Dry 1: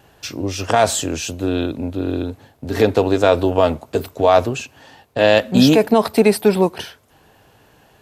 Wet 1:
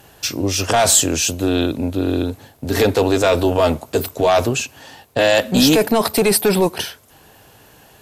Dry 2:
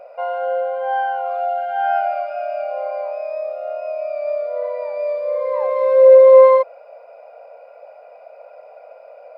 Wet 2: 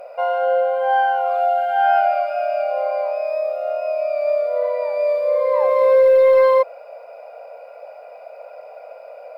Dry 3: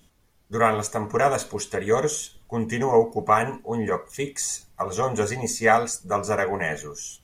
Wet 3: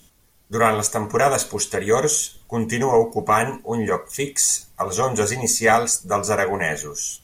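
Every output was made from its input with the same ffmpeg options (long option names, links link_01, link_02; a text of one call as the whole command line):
ffmpeg -i in.wav -af "apsyclip=12dB,aemphasis=mode=production:type=cd,volume=-8.5dB" out.wav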